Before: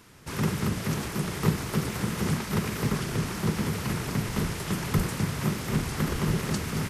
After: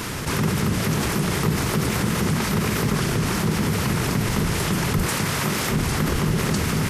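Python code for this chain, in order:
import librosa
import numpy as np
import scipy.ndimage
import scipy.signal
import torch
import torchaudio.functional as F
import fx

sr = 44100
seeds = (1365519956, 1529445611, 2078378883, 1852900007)

y = fx.low_shelf(x, sr, hz=320.0, db=-9.5, at=(5.05, 5.71))
y = fx.env_flatten(y, sr, amount_pct=70)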